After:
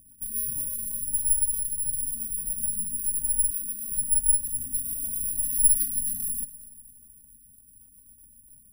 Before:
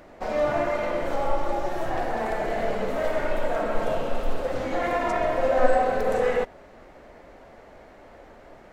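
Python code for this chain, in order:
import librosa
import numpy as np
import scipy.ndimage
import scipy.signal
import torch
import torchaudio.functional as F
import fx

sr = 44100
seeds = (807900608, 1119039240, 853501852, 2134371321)

p1 = fx.highpass(x, sr, hz=220.0, slope=12, at=(3.5, 3.92))
p2 = fx.quant_float(p1, sr, bits=4)
p3 = fx.fixed_phaser(p2, sr, hz=1400.0, stages=6)
p4 = fx.vibrato(p3, sr, rate_hz=0.66, depth_cents=14.0)
p5 = fx.rotary(p4, sr, hz=7.5)
p6 = p5 + fx.echo_feedback(p5, sr, ms=243, feedback_pct=51, wet_db=-18.0, dry=0)
p7 = (np.kron(scipy.signal.resample_poly(p6, 1, 4), np.eye(4)[0]) * 4)[:len(p6)]
p8 = fx.brickwall_bandstop(p7, sr, low_hz=320.0, high_hz=4800.0)
y = F.gain(torch.from_numpy(p8), -6.0).numpy()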